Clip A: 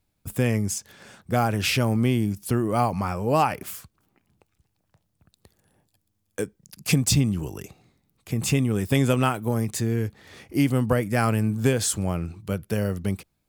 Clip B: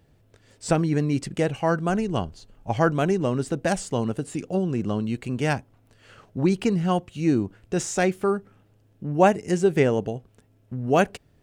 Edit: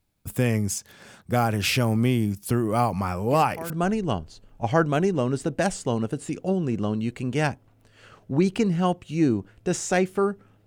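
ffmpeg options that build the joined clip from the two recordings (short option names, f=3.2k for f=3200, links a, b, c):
-filter_complex "[1:a]asplit=2[a][b];[0:a]apad=whole_dur=10.66,atrim=end=10.66,atrim=end=3.702[c];[b]atrim=start=1.758:end=8.72[d];[a]atrim=start=1.33:end=1.76,asetpts=PTS-STARTPTS,volume=-13dB,afade=t=in:d=0.004:c=hsin,afade=t=out:st=0.426:d=0.004:c=hsin,adelay=3270[e];[c][d]acrossfade=d=0.004:c1=hsin:c2=hsin[f];[f][e]amix=inputs=2:normalize=0"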